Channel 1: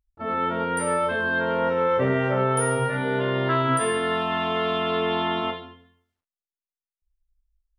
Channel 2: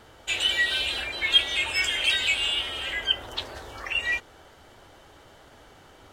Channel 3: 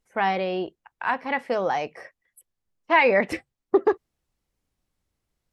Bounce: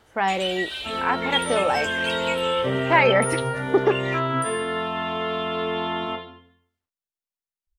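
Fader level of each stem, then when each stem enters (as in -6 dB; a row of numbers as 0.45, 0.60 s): -2.0, -6.0, +0.5 dB; 0.65, 0.00, 0.00 s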